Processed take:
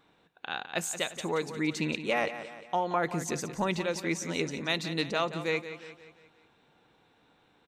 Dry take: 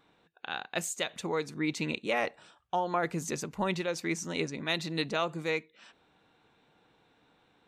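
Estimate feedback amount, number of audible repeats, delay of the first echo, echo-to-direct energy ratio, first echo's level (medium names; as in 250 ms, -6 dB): 48%, 4, 176 ms, -11.0 dB, -12.0 dB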